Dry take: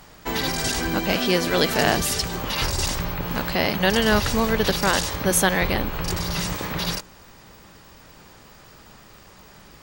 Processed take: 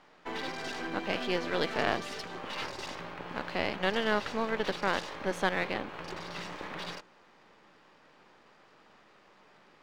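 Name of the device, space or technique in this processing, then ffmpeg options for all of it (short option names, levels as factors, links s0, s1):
crystal radio: -af "highpass=270,lowpass=3100,aeval=exprs='if(lt(val(0),0),0.447*val(0),val(0))':c=same,volume=0.473"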